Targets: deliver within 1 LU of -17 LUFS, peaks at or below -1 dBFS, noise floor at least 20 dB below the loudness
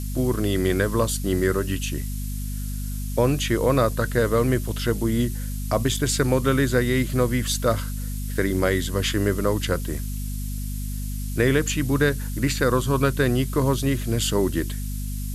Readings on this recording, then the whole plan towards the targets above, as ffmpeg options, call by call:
hum 50 Hz; harmonics up to 250 Hz; hum level -26 dBFS; noise floor -29 dBFS; noise floor target -44 dBFS; loudness -23.5 LUFS; peak -6.5 dBFS; loudness target -17.0 LUFS
-> -af "bandreject=f=50:t=h:w=4,bandreject=f=100:t=h:w=4,bandreject=f=150:t=h:w=4,bandreject=f=200:t=h:w=4,bandreject=f=250:t=h:w=4"
-af "afftdn=nr=15:nf=-29"
-af "volume=6.5dB,alimiter=limit=-1dB:level=0:latency=1"

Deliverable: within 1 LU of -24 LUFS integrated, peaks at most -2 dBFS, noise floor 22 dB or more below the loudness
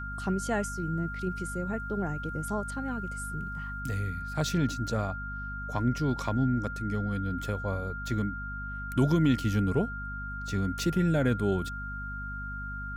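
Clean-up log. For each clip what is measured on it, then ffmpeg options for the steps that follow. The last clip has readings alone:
hum 50 Hz; harmonics up to 250 Hz; hum level -37 dBFS; steady tone 1400 Hz; tone level -37 dBFS; loudness -31.0 LUFS; peak -13.5 dBFS; loudness target -24.0 LUFS
-> -af "bandreject=f=50:t=h:w=6,bandreject=f=100:t=h:w=6,bandreject=f=150:t=h:w=6,bandreject=f=200:t=h:w=6,bandreject=f=250:t=h:w=6"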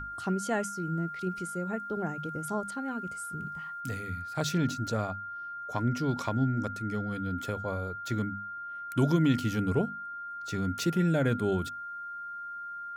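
hum none; steady tone 1400 Hz; tone level -37 dBFS
-> -af "bandreject=f=1.4k:w=30"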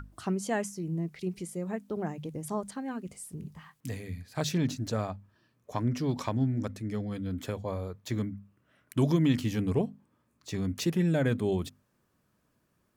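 steady tone none; loudness -32.0 LUFS; peak -14.0 dBFS; loudness target -24.0 LUFS
-> -af "volume=8dB"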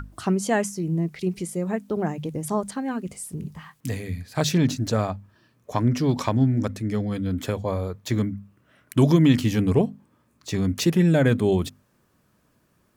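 loudness -24.0 LUFS; peak -6.0 dBFS; noise floor -65 dBFS

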